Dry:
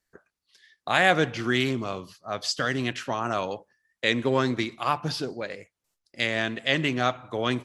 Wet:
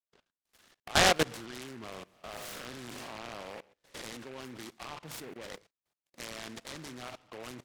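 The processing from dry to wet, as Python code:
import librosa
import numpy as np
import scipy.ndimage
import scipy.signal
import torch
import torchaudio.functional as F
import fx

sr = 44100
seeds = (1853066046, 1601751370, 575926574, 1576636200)

y = fx.spec_blur(x, sr, span_ms=195.0, at=(1.9, 4.17))
y = fx.bandpass_edges(y, sr, low_hz=110.0, high_hz=4700.0)
y = fx.level_steps(y, sr, step_db=21)
y = fx.low_shelf(y, sr, hz=420.0, db=-4.5)
y = fx.noise_mod_delay(y, sr, seeds[0], noise_hz=1500.0, depth_ms=0.13)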